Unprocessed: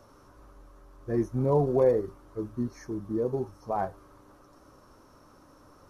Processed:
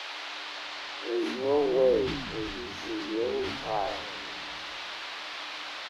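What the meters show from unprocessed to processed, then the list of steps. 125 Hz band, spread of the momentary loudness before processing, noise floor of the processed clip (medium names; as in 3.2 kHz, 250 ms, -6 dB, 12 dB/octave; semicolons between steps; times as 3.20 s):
-12.5 dB, 14 LU, -39 dBFS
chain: spectral blur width 100 ms; band noise 610–4300 Hz -44 dBFS; in parallel at -1 dB: compression, threshold -37 dBFS, peak gain reduction 16.5 dB; on the sum: Chebyshev high-pass 290 Hz, order 6; on a send: frequency-shifting echo 161 ms, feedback 63%, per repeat -120 Hz, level -15 dB; on the sum: decay stretcher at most 45 dB/s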